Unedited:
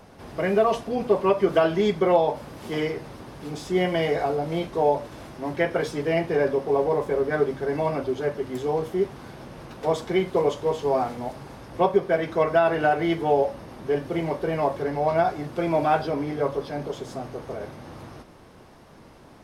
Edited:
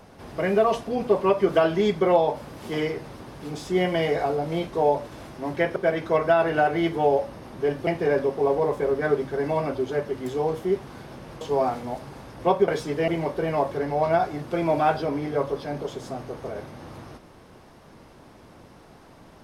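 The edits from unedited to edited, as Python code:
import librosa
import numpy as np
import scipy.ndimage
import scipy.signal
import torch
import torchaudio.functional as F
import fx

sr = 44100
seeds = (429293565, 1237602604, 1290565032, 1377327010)

y = fx.edit(x, sr, fx.swap(start_s=5.76, length_s=0.4, other_s=12.02, other_length_s=2.11),
    fx.cut(start_s=9.7, length_s=1.05), tone=tone)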